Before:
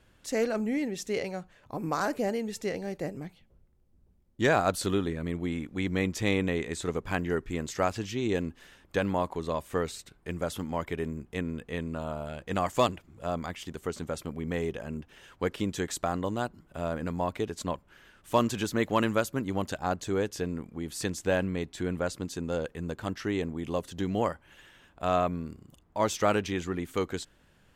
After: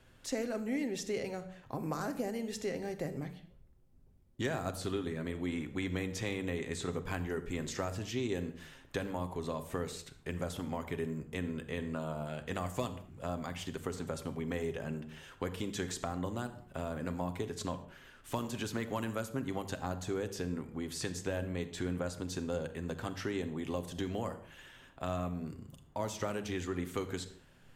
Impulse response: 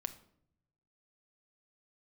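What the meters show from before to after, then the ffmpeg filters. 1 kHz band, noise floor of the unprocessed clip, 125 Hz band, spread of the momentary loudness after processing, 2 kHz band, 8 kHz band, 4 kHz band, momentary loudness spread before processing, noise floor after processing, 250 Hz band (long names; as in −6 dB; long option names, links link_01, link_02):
−10.0 dB, −63 dBFS, −4.5 dB, 6 LU, −7.5 dB, −4.5 dB, −5.5 dB, 10 LU, −61 dBFS, −6.0 dB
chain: -filter_complex "[0:a]acrossover=split=330|7400[link_01][link_02][link_03];[link_01]acompressor=threshold=-39dB:ratio=4[link_04];[link_02]acompressor=threshold=-38dB:ratio=4[link_05];[link_03]acompressor=threshold=-53dB:ratio=4[link_06];[link_04][link_05][link_06]amix=inputs=3:normalize=0[link_07];[1:a]atrim=start_sample=2205,afade=type=out:start_time=0.22:duration=0.01,atrim=end_sample=10143,asetrate=32193,aresample=44100[link_08];[link_07][link_08]afir=irnorm=-1:irlink=0"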